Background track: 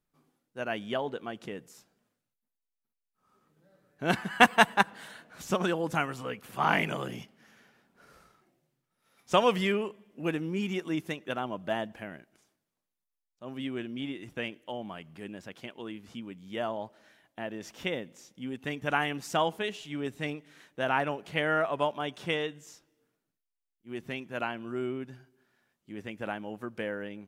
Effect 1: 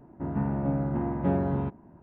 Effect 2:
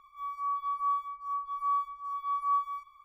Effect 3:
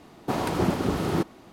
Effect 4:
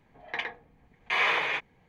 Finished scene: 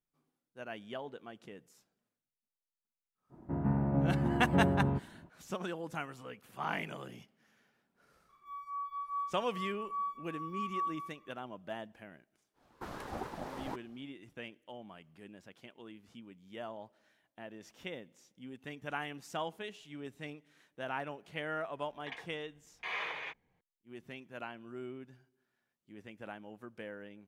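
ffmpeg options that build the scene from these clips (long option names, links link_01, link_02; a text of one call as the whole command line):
ffmpeg -i bed.wav -i cue0.wav -i cue1.wav -i cue2.wav -i cue3.wav -filter_complex "[0:a]volume=-10.5dB[link_01];[1:a]equalizer=frequency=130:width_type=o:width=0.77:gain=2.5[link_02];[3:a]aeval=exprs='val(0)*sin(2*PI*570*n/s+570*0.3/4*sin(2*PI*4*n/s))':channel_layout=same[link_03];[link_02]atrim=end=2.02,asetpts=PTS-STARTPTS,volume=-3.5dB,afade=type=in:duration=0.05,afade=type=out:start_time=1.97:duration=0.05,adelay=145089S[link_04];[2:a]atrim=end=3.04,asetpts=PTS-STARTPTS,volume=-7.5dB,afade=type=in:duration=0.004:curve=hsin,afade=type=out:start_time=3.036:duration=0.004:curve=hsin,adelay=8290[link_05];[link_03]atrim=end=1.52,asetpts=PTS-STARTPTS,volume=-14dB,afade=type=in:duration=0.1,afade=type=out:start_time=1.42:duration=0.1,adelay=12530[link_06];[4:a]atrim=end=1.88,asetpts=PTS-STARTPTS,volume=-13dB,afade=type=in:duration=0.004:curve=hsin,afade=type=out:start_time=1.876:duration=0.004:curve=hsin,adelay=21730[link_07];[link_01][link_04][link_05][link_06][link_07]amix=inputs=5:normalize=0" out.wav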